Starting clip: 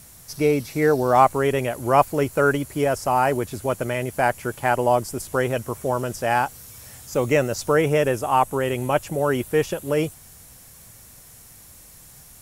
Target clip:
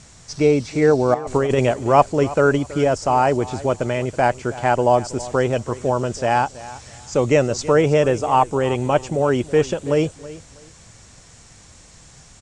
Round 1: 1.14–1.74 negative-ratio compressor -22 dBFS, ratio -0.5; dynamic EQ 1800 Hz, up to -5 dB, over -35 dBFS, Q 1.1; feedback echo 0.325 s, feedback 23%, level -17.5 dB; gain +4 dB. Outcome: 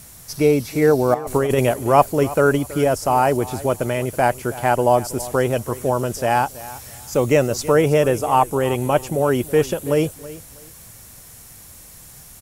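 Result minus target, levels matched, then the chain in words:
8000 Hz band +3.5 dB
1.14–1.74 negative-ratio compressor -22 dBFS, ratio -0.5; dynamic EQ 1800 Hz, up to -5 dB, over -35 dBFS, Q 1.1; steep low-pass 8000 Hz 48 dB/oct; feedback echo 0.325 s, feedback 23%, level -17.5 dB; gain +4 dB

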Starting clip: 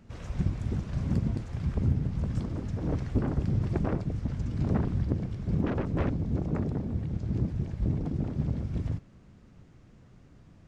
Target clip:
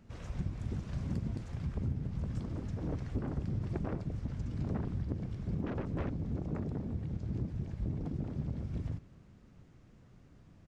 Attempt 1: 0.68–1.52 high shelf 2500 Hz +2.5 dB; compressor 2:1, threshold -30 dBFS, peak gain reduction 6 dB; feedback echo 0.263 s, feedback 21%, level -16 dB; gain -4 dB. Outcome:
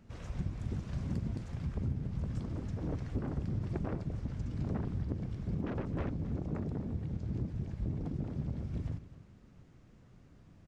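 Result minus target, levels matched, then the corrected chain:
echo-to-direct +7 dB
0.68–1.52 high shelf 2500 Hz +2.5 dB; compressor 2:1, threshold -30 dBFS, peak gain reduction 6 dB; feedback echo 0.263 s, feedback 21%, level -23 dB; gain -4 dB

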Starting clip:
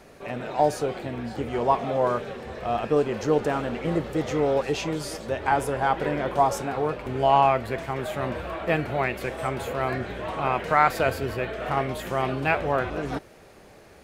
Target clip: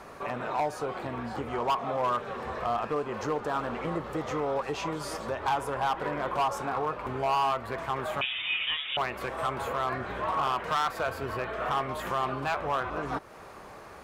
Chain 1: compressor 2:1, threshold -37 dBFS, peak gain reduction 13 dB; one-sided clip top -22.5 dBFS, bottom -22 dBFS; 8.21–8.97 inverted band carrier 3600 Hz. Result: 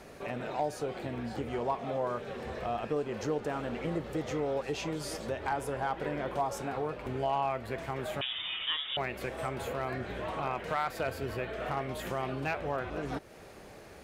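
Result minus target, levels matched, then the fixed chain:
1000 Hz band -2.5 dB
compressor 2:1, threshold -37 dBFS, peak gain reduction 13 dB; bell 1100 Hz +13 dB 0.9 oct; one-sided clip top -22.5 dBFS, bottom -22 dBFS; 8.21–8.97 inverted band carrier 3600 Hz

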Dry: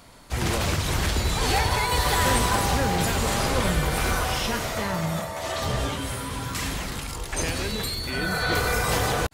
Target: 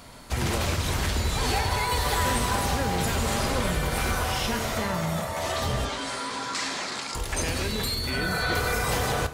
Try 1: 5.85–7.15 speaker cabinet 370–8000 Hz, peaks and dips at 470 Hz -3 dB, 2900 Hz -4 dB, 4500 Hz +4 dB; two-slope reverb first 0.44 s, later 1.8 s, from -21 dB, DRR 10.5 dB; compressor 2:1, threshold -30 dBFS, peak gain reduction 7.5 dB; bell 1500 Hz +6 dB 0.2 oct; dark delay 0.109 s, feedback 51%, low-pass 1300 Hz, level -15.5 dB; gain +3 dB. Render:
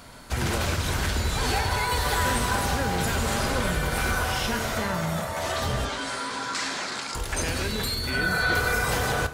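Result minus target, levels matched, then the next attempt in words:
2000 Hz band +2.5 dB
5.85–7.15 speaker cabinet 370–8000 Hz, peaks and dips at 470 Hz -3 dB, 2900 Hz -4 dB, 4500 Hz +4 dB; two-slope reverb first 0.44 s, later 1.8 s, from -21 dB, DRR 10.5 dB; compressor 2:1, threshold -30 dBFS, peak gain reduction 7.5 dB; dark delay 0.109 s, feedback 51%, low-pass 1300 Hz, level -15.5 dB; gain +3 dB

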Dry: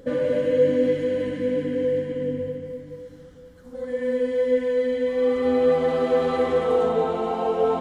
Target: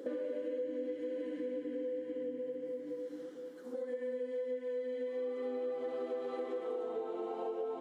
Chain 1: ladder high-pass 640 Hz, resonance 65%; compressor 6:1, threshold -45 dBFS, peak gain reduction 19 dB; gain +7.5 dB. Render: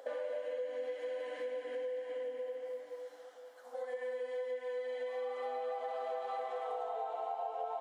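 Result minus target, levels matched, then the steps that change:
250 Hz band -19.0 dB
change: ladder high-pass 300 Hz, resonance 65%

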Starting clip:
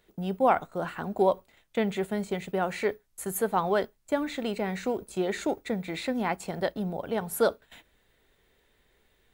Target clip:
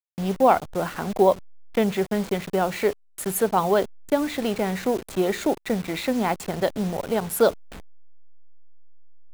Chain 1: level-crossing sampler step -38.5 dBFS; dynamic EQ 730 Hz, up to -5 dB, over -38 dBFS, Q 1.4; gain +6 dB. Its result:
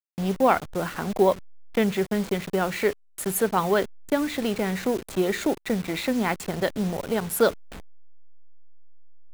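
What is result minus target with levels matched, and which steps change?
2000 Hz band +3.0 dB
change: dynamic EQ 1800 Hz, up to -5 dB, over -38 dBFS, Q 1.4

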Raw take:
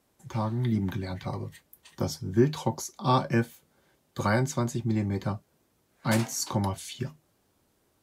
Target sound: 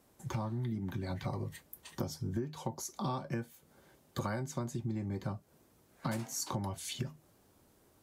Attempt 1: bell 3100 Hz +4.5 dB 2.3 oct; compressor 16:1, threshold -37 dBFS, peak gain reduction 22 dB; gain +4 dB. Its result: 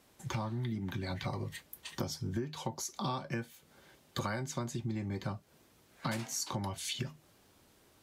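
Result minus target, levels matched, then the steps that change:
4000 Hz band +4.5 dB
change: bell 3100 Hz -3.5 dB 2.3 oct

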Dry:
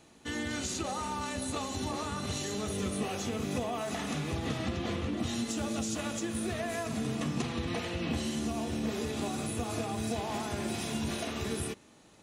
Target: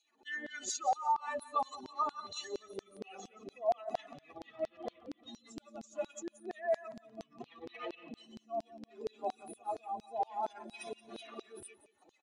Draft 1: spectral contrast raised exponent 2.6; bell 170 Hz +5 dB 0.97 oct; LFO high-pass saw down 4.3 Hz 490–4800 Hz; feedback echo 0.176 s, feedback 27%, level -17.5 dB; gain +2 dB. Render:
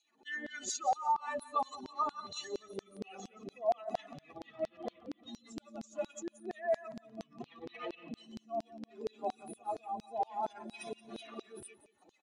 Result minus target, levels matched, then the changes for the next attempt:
125 Hz band +5.0 dB
change: bell 170 Hz -2.5 dB 0.97 oct

